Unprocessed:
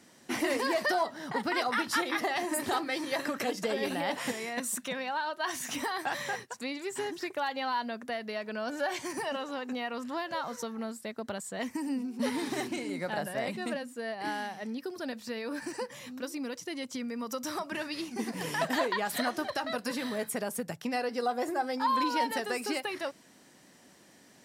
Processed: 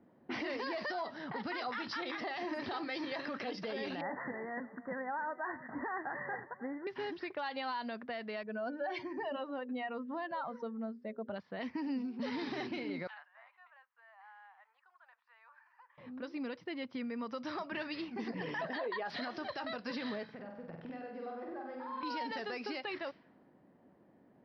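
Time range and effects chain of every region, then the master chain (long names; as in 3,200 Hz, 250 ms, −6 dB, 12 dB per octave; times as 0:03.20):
0:04.01–0:06.87: Chebyshev low-pass filter 2,000 Hz, order 10 + repeating echo 309 ms, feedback 37%, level −17 dB
0:08.43–0:11.36: expanding power law on the bin magnitudes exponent 1.6 + mains-hum notches 60/120/180/240/300/360/420/480/540/600 Hz
0:13.07–0:15.98: Butterworth high-pass 950 Hz + high shelf with overshoot 6,900 Hz +13.5 dB, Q 3 + downward compressor 3 to 1, threshold −46 dBFS
0:18.28–0:19.10: spectral envelope exaggerated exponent 1.5 + double-tracking delay 17 ms −14 dB
0:20.24–0:22.03: downward compressor, threshold −41 dBFS + flutter between parallel walls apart 8.2 metres, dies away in 0.86 s
whole clip: low-pass that shuts in the quiet parts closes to 720 Hz, open at −27 dBFS; elliptic low-pass filter 5,100 Hz, stop band 40 dB; brickwall limiter −28 dBFS; level −2 dB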